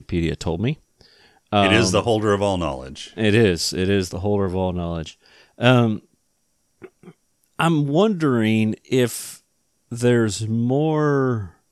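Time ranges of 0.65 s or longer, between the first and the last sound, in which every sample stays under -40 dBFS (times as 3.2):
5.99–6.82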